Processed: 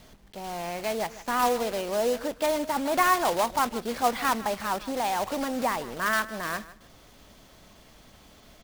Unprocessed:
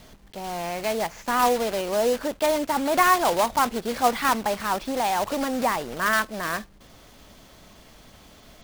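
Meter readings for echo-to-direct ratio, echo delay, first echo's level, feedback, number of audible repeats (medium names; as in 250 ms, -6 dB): -17.0 dB, 155 ms, -17.0 dB, 20%, 2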